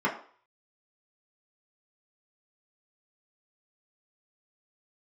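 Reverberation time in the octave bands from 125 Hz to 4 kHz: 0.25, 0.40, 0.45, 0.50, 0.45, 0.45 seconds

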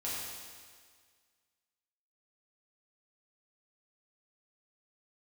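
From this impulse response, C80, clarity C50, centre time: 0.0 dB, −1.5 dB, 113 ms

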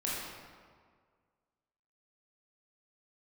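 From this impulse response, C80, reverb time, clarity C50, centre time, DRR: 0.5 dB, 1.8 s, −2.0 dB, 109 ms, −7.0 dB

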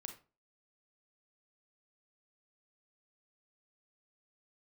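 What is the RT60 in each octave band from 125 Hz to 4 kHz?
0.35, 0.35, 0.35, 0.30, 0.25, 0.25 seconds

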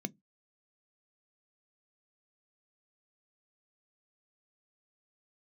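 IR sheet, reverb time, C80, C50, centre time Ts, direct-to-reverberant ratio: 0.15 s, 39.5 dB, 35.0 dB, 5 ms, 14.5 dB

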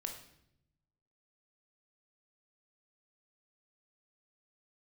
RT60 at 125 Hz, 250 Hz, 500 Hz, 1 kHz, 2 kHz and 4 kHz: 1.4, 1.2, 0.85, 0.65, 0.65, 0.65 seconds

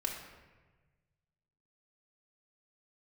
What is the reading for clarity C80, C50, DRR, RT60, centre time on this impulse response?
6.5 dB, 4.0 dB, −1.5 dB, 1.3 s, 43 ms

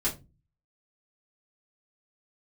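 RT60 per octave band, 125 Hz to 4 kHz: 0.65, 0.50, 0.30, 0.20, 0.20, 0.20 seconds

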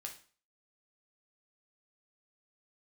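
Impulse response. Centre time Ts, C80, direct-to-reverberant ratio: 16 ms, 15.0 dB, 1.0 dB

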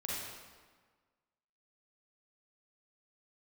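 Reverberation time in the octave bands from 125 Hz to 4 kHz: 1.5, 1.6, 1.5, 1.5, 1.3, 1.1 seconds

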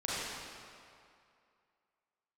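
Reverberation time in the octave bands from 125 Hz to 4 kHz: 2.1, 2.1, 2.4, 2.5, 2.2, 1.8 seconds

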